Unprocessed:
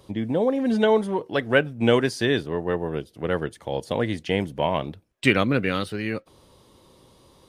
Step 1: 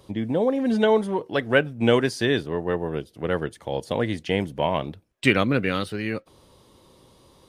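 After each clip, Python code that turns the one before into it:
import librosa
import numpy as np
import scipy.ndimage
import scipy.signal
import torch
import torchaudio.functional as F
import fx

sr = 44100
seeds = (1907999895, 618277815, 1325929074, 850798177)

y = x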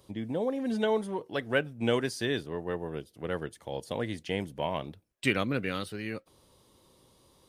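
y = fx.high_shelf(x, sr, hz=6000.0, db=7.5)
y = F.gain(torch.from_numpy(y), -8.5).numpy()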